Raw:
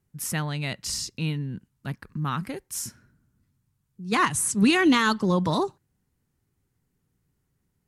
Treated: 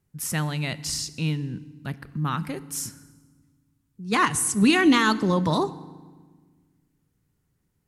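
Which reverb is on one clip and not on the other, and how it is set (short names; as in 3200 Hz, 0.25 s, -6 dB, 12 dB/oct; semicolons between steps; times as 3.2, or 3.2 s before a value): FDN reverb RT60 1.4 s, low-frequency decay 1.55×, high-frequency decay 0.8×, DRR 15 dB; gain +1 dB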